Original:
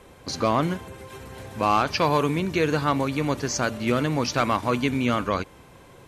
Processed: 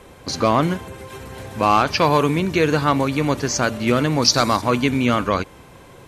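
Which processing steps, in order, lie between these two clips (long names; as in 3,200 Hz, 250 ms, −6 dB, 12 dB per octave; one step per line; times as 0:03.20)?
0:04.22–0:04.62: high shelf with overshoot 3,600 Hz +6 dB, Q 3
level +5 dB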